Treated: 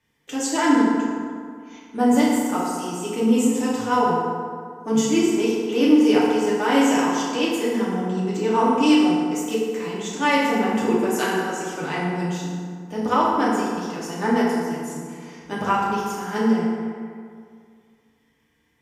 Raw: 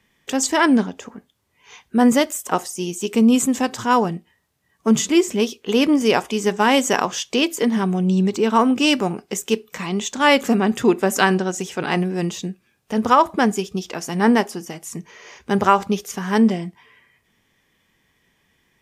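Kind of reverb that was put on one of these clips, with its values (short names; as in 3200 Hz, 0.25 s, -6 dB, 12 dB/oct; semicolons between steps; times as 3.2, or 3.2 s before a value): FDN reverb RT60 2.1 s, low-frequency decay 1×, high-frequency decay 0.5×, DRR -7.5 dB; gain -11.5 dB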